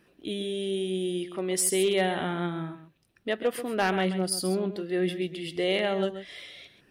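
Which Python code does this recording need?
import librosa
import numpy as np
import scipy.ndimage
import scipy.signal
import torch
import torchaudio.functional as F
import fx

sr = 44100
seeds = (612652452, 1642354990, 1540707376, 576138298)

y = fx.fix_declip(x, sr, threshold_db=-17.5)
y = fx.fix_echo_inverse(y, sr, delay_ms=133, level_db=-11.5)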